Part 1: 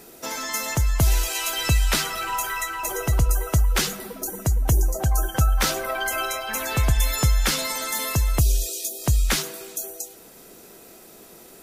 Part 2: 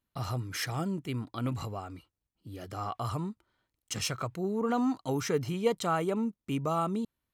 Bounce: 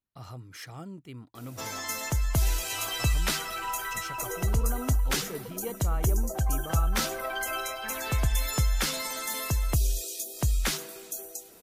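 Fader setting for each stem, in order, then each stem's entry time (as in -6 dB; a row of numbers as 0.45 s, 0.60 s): -6.0 dB, -9.0 dB; 1.35 s, 0.00 s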